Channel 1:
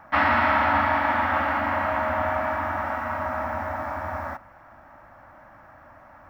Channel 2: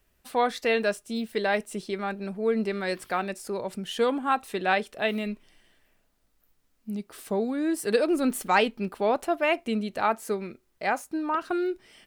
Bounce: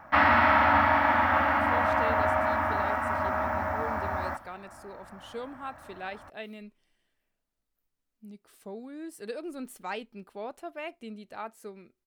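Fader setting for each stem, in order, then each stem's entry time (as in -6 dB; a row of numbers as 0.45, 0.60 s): -0.5, -14.0 dB; 0.00, 1.35 s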